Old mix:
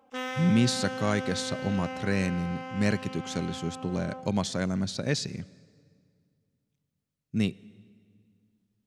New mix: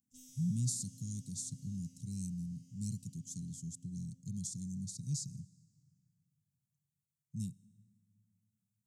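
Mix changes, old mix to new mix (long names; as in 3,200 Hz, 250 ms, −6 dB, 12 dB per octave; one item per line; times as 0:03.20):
speech: add high-pass filter 160 Hz 12 dB per octave
master: add elliptic band-stop filter 140–7,100 Hz, stop band 70 dB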